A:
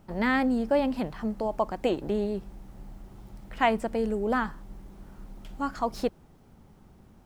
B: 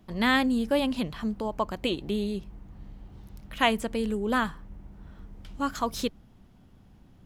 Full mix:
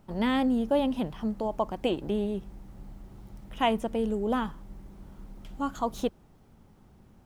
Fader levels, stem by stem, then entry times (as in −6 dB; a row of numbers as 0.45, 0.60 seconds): −2.5, −10.5 decibels; 0.00, 0.00 seconds